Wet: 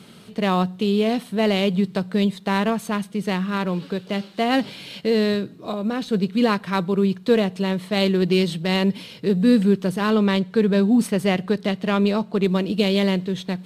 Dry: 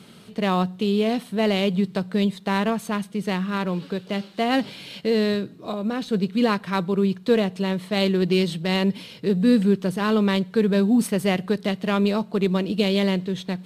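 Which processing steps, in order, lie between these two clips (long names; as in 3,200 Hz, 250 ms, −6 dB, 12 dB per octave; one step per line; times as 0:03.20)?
0:10.10–0:12.44: high-shelf EQ 10,000 Hz −7.5 dB
level +1.5 dB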